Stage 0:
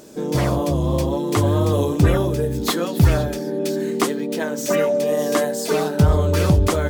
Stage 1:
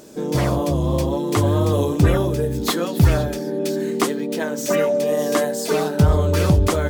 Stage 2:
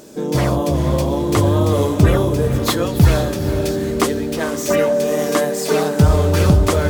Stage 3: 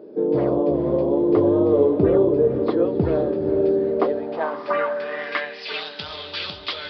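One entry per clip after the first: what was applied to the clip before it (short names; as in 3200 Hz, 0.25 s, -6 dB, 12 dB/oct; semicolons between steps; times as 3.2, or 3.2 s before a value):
nothing audible
diffused feedback echo 0.453 s, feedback 43%, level -9 dB; gain +2.5 dB
band-pass sweep 410 Hz -> 3500 Hz, 3.71–5.9; downsampling 11025 Hz; gain +4.5 dB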